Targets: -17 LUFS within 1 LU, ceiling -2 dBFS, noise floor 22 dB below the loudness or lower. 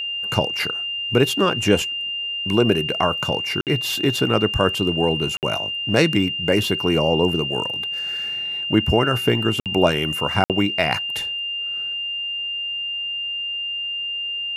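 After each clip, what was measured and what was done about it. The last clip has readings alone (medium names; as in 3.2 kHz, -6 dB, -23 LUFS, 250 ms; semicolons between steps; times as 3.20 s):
dropouts 4; longest dropout 58 ms; steady tone 2.8 kHz; tone level -24 dBFS; loudness -21.0 LUFS; peak level -1.5 dBFS; loudness target -17.0 LUFS
-> interpolate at 3.61/5.37/9.60/10.44 s, 58 ms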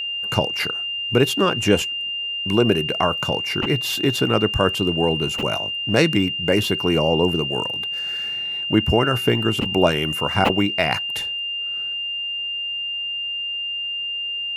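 dropouts 0; steady tone 2.8 kHz; tone level -24 dBFS
-> band-stop 2.8 kHz, Q 30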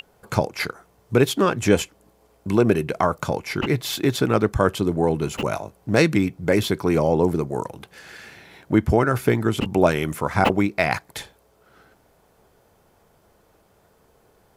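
steady tone not found; loudness -22.0 LUFS; peak level -2.0 dBFS; loudness target -17.0 LUFS
-> trim +5 dB; peak limiter -2 dBFS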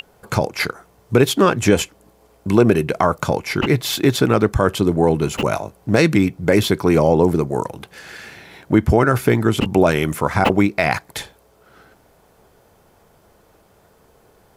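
loudness -17.5 LUFS; peak level -2.0 dBFS; noise floor -55 dBFS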